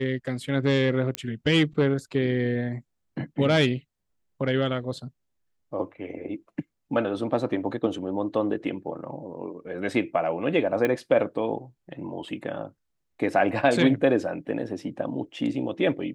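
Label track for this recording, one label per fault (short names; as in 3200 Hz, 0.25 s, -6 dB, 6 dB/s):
1.150000	1.150000	pop -11 dBFS
10.850000	10.850000	pop -13 dBFS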